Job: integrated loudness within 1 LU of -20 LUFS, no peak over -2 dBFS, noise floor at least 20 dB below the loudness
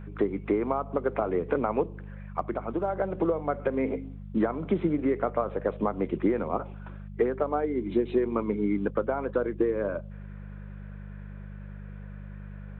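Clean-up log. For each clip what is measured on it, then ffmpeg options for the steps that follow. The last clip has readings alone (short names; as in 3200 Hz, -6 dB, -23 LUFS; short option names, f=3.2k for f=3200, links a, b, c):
hum 50 Hz; harmonics up to 200 Hz; hum level -39 dBFS; loudness -29.0 LUFS; peak -13.5 dBFS; loudness target -20.0 LUFS
-> -af "bandreject=f=50:t=h:w=4,bandreject=f=100:t=h:w=4,bandreject=f=150:t=h:w=4,bandreject=f=200:t=h:w=4"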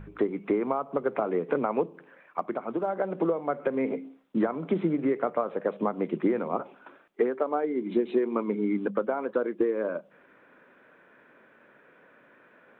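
hum none; loudness -29.0 LUFS; peak -13.5 dBFS; loudness target -20.0 LUFS
-> -af "volume=9dB"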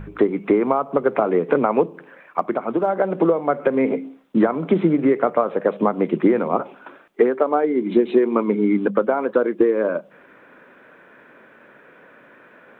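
loudness -20.0 LUFS; peak -4.5 dBFS; noise floor -50 dBFS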